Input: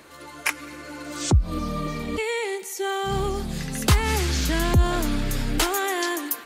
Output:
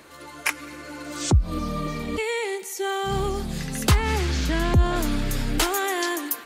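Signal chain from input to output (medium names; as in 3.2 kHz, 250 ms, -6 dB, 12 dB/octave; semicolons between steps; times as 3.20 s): 3.91–4.96 s: treble shelf 6.6 kHz -11.5 dB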